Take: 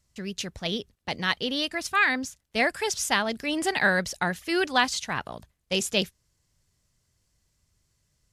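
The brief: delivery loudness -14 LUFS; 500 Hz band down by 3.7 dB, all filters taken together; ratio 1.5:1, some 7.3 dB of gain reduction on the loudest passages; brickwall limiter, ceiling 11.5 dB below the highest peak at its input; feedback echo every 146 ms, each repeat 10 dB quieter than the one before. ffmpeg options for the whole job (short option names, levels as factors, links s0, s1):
-af "equalizer=f=500:t=o:g=-5,acompressor=threshold=0.0112:ratio=1.5,alimiter=level_in=1.19:limit=0.0631:level=0:latency=1,volume=0.841,aecho=1:1:146|292|438|584:0.316|0.101|0.0324|0.0104,volume=12.6"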